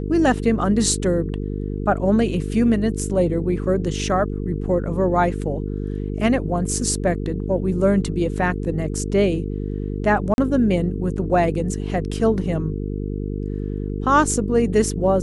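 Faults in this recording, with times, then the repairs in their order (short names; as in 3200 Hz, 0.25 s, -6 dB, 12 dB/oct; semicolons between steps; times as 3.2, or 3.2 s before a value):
buzz 50 Hz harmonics 9 -26 dBFS
10.34–10.38 gap 41 ms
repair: de-hum 50 Hz, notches 9; interpolate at 10.34, 41 ms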